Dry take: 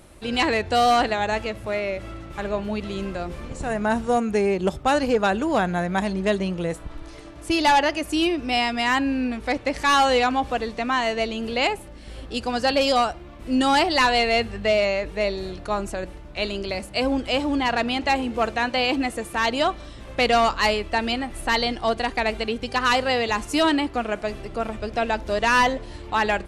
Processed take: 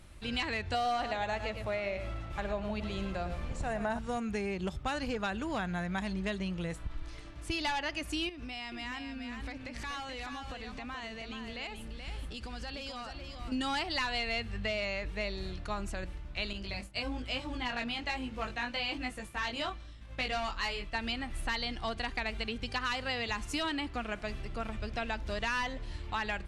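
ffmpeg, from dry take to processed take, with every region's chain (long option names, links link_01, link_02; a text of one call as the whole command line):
ffmpeg -i in.wav -filter_complex "[0:a]asettb=1/sr,asplit=3[link_01][link_02][link_03];[link_01]atrim=end=0.744[link_04];[link_02]atrim=start=0.74:end=3.99,asetpts=PTS-STARTPTS,afade=type=in:duration=0.004:curve=qsin,afade=type=out:start_time=3.246:duration=0.004:curve=qsin,equalizer=frequency=660:width=1.3:gain=8,aecho=1:1:108:0.316,atrim=end_sample=143325[link_05];[link_03]atrim=start=3.986[link_06];[link_04][link_05]acrossfade=duration=0.004:curve1=hsin:curve2=qsin[link_07];[link_07][link_06]acrossfade=duration=0.004:curve1=qsin:curve2=hsin,asettb=1/sr,asplit=3[link_08][link_09][link_10];[link_08]atrim=end=8.294[link_11];[link_09]atrim=start=8.29:end=13.52,asetpts=PTS-STARTPTS,afade=type=in:duration=0.004:curve=qsin,afade=type=out:start_time=5.226:duration=0.004:curve=qsin,acompressor=threshold=-31dB:ratio=6:attack=3.2:release=140:knee=1:detection=peak,aecho=1:1:429:0.501,atrim=end_sample=230643[link_12];[link_10]atrim=start=13.516[link_13];[link_11][link_12]acrossfade=duration=0.004:curve1=hsin:curve2=qsin[link_14];[link_14][link_13]acrossfade=duration=0.004:curve1=qsin:curve2=hsin,asettb=1/sr,asplit=3[link_15][link_16][link_17];[link_15]atrim=end=16.534[link_18];[link_16]atrim=start=16.53:end=20.95,asetpts=PTS-STARTPTS,afade=type=in:duration=0.004:curve=qsin,afade=type=out:start_time=4.416:duration=0.004:curve=qsin,agate=range=-33dB:threshold=-35dB:ratio=3:release=100:detection=peak,flanger=delay=19:depth=2.5:speed=1.1[link_19];[link_17]atrim=start=20.946[link_20];[link_18][link_19]acrossfade=duration=0.004:curve1=hsin:curve2=qsin[link_21];[link_21][link_20]acrossfade=duration=0.004:curve1=qsin:curve2=hsin,lowpass=frequency=3200:poles=1,equalizer=frequency=480:width=0.44:gain=-13,acompressor=threshold=-31dB:ratio=4" out.wav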